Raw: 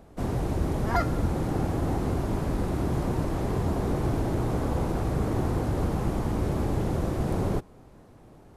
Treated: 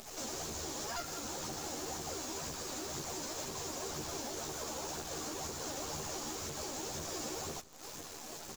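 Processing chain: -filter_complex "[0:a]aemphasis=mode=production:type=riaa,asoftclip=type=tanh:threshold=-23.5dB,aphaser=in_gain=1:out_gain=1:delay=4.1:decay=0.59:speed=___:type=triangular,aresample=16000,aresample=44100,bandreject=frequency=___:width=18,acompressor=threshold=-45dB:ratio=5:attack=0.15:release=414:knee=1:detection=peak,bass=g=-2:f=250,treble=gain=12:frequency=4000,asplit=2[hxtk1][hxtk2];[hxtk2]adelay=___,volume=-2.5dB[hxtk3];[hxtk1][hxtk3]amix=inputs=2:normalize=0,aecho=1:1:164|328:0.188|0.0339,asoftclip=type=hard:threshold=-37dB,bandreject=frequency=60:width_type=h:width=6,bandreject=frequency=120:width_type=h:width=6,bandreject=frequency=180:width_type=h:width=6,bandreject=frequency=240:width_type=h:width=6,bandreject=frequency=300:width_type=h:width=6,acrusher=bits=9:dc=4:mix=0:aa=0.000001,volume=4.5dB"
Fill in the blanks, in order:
2, 2000, 13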